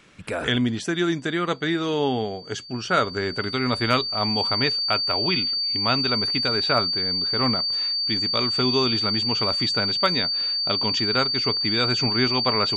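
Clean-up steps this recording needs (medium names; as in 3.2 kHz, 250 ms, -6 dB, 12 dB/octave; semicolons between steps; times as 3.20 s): clip repair -8 dBFS; band-stop 4.6 kHz, Q 30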